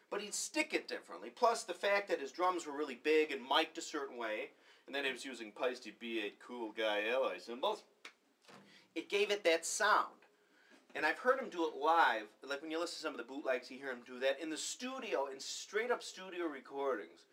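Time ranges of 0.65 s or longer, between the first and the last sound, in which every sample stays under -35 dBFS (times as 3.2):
8.05–8.97
10.04–10.96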